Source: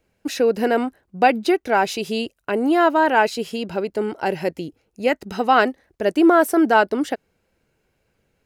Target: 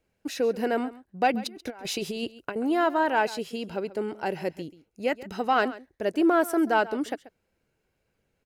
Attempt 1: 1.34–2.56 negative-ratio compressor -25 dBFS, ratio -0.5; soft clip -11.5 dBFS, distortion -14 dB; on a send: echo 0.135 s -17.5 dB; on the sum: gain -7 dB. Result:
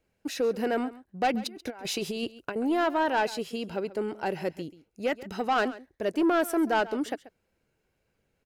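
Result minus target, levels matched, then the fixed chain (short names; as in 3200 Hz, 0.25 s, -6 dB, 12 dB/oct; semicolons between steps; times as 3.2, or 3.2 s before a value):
soft clip: distortion +13 dB
1.34–2.56 negative-ratio compressor -25 dBFS, ratio -0.5; soft clip -2.5 dBFS, distortion -28 dB; on a send: echo 0.135 s -17.5 dB; on the sum: gain -7 dB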